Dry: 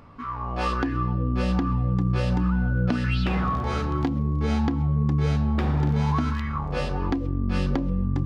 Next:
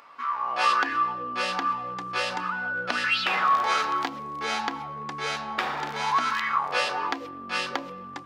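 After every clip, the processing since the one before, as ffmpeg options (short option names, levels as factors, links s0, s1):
-filter_complex "[0:a]asplit=2[s0][s1];[s1]alimiter=limit=0.0891:level=0:latency=1,volume=1.26[s2];[s0][s2]amix=inputs=2:normalize=0,highpass=970,dynaudnorm=f=370:g=3:m=2,volume=0.841"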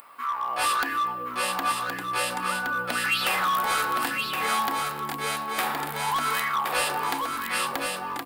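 -filter_complex "[0:a]acrossover=split=3300[s0][s1];[s0]asoftclip=type=hard:threshold=0.0794[s2];[s1]aexciter=amount=13:drive=5.8:freq=8600[s3];[s2][s3]amix=inputs=2:normalize=0,aecho=1:1:1069:0.596"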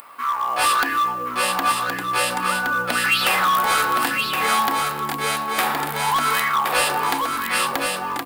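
-af "acrusher=bits=6:mode=log:mix=0:aa=0.000001,volume=2"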